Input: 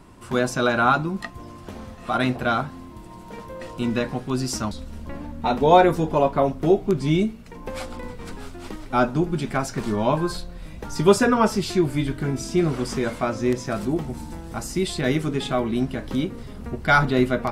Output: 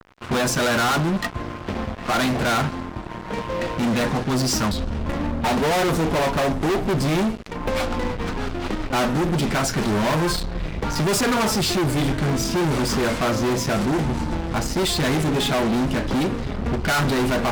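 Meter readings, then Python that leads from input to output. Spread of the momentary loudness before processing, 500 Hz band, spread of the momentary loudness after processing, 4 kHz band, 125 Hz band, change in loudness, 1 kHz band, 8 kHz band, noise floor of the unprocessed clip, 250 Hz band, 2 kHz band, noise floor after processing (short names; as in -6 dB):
19 LU, -1.0 dB, 8 LU, +7.0 dB, +3.0 dB, +0.5 dB, -0.5 dB, +7.5 dB, -41 dBFS, +1.5 dB, +2.0 dB, -33 dBFS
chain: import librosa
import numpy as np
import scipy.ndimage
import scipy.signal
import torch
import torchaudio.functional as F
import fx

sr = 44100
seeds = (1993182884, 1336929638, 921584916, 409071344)

y = fx.env_lowpass(x, sr, base_hz=2600.0, full_db=-17.0)
y = fx.fuzz(y, sr, gain_db=33.0, gate_db=-42.0)
y = y * 10.0 ** (-5.5 / 20.0)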